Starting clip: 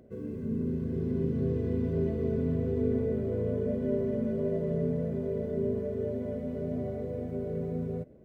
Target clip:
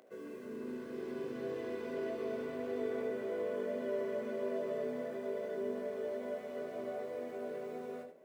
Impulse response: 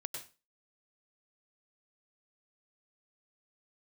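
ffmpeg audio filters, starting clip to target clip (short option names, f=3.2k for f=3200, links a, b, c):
-filter_complex "[0:a]highpass=740,asplit=2[a][b];[1:a]atrim=start_sample=2205,asetrate=83790,aresample=44100,adelay=21[c];[b][c]afir=irnorm=-1:irlink=0,volume=3.5dB[d];[a][d]amix=inputs=2:normalize=0,volume=4.5dB"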